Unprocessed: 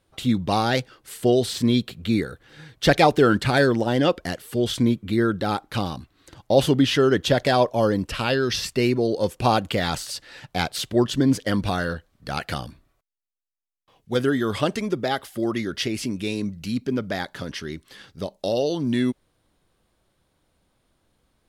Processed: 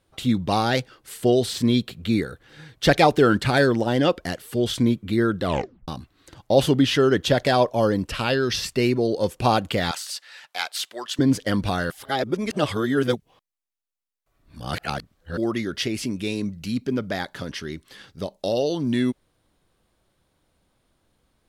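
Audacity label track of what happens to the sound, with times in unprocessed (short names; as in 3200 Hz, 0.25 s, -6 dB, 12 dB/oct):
5.410000	5.410000	tape stop 0.47 s
9.910000	11.190000	HPF 1000 Hz
11.900000	15.370000	reverse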